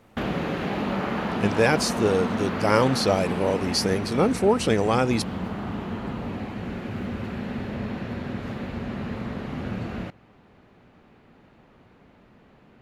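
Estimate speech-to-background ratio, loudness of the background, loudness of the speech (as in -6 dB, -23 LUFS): 7.0 dB, -30.5 LUFS, -23.5 LUFS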